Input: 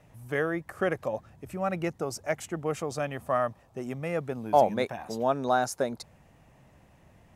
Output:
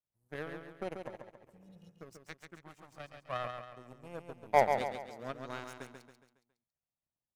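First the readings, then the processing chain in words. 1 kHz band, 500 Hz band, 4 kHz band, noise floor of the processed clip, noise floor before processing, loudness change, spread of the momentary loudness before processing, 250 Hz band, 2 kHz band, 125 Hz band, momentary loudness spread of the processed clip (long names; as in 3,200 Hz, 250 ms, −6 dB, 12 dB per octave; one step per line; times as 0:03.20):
−7.0 dB, −9.5 dB, −8.0 dB, below −85 dBFS, −60 dBFS, −7.0 dB, 10 LU, −14.5 dB, −8.0 dB, −12.5 dB, 24 LU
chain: healed spectral selection 0:01.48–0:01.87, 300–2,800 Hz
auto-filter notch saw down 0.29 Hz 290–3,000 Hz
power curve on the samples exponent 2
on a send: repeating echo 138 ms, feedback 44%, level −6 dB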